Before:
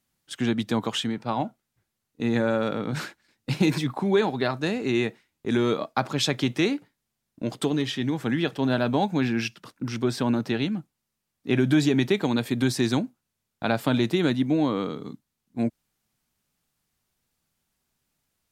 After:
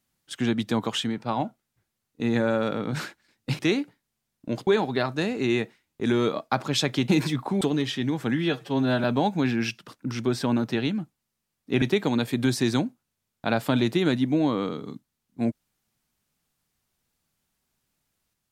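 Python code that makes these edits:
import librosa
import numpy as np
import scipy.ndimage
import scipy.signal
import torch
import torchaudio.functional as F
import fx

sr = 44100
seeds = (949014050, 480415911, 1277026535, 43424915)

y = fx.edit(x, sr, fx.swap(start_s=3.59, length_s=0.53, other_s=6.53, other_length_s=1.08),
    fx.stretch_span(start_s=8.35, length_s=0.46, factor=1.5),
    fx.cut(start_s=11.59, length_s=0.41), tone=tone)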